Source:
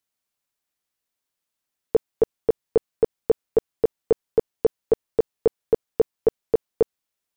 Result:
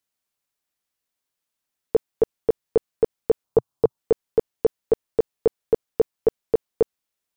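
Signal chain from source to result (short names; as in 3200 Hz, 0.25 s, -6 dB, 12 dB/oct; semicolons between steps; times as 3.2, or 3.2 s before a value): 3.44–3.98 graphic EQ 125/1000/2000 Hz +8/+9/-10 dB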